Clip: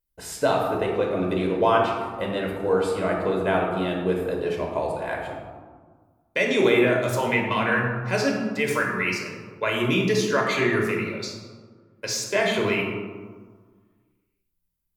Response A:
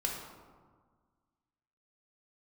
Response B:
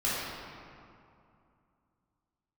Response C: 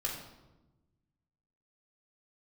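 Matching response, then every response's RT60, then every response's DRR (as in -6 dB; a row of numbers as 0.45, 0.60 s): A; 1.6, 2.5, 1.1 s; -1.0, -10.5, -3.0 dB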